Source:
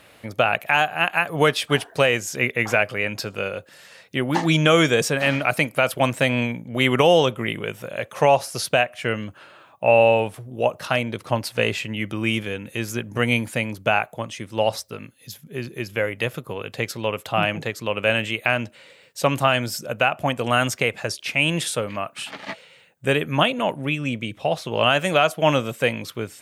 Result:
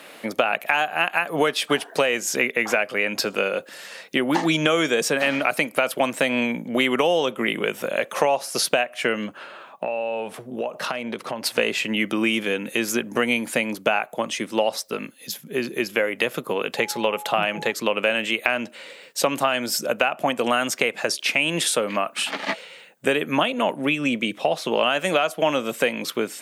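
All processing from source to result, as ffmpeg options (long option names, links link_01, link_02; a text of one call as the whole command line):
ffmpeg -i in.wav -filter_complex "[0:a]asettb=1/sr,asplit=3[link_01][link_02][link_03];[link_01]atrim=end=9.264[link_04];[link_02]atrim=start=9.26:end=11.46,asetpts=PTS-STARTPTS,afade=type=in:duration=0.004:curve=qsin,afade=type=out:start_time=2.196:duration=0.004:curve=qsin,highshelf=frequency=5500:gain=-7,bandreject=frequency=310:width=6,acompressor=threshold=-29dB:ratio=16:attack=3.2:release=140:knee=1:detection=peak[link_05];[link_03]atrim=start=11.456[link_06];[link_04][link_05]acrossfade=duration=0.004:curve1=hsin:curve2=qsin[link_07];[link_07][link_06]acrossfade=duration=0.004:curve1=qsin:curve2=hsin,asettb=1/sr,asplit=3[link_08][link_09][link_10];[link_08]atrim=end=16.774[link_11];[link_09]atrim=start=16.77:end=17.72,asetpts=PTS-STARTPTS,afade=type=in:duration=0.004:curve=qsin,afade=type=out:start_time=0.946:duration=0.004:curve=qsin,equalizer=frequency=280:width_type=o:width=0.21:gain=-11.5,bandreject=frequency=4900:width=17,aeval=exprs='val(0)+0.01*sin(2*PI*840*n/s)':channel_layout=same[link_12];[link_10]atrim=start=17.716[link_13];[link_11][link_12]acrossfade=duration=0.004:curve1=hsin:curve2=qsin[link_14];[link_14][link_13]acrossfade=duration=0.004:curve1=qsin:curve2=hsin,highpass=frequency=200:width=0.5412,highpass=frequency=200:width=1.3066,acompressor=threshold=-26dB:ratio=4,volume=7.5dB" out.wav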